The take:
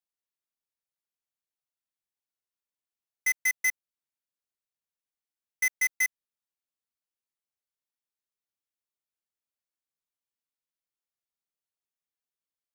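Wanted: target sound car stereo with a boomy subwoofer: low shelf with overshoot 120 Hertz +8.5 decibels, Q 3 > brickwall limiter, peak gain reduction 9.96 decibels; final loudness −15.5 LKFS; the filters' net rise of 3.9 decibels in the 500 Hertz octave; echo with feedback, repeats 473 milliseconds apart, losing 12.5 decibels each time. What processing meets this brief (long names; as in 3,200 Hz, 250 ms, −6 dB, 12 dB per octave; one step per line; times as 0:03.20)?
low shelf with overshoot 120 Hz +8.5 dB, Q 3
parametric band 500 Hz +7 dB
repeating echo 473 ms, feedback 24%, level −12.5 dB
level +23 dB
brickwall limiter −8 dBFS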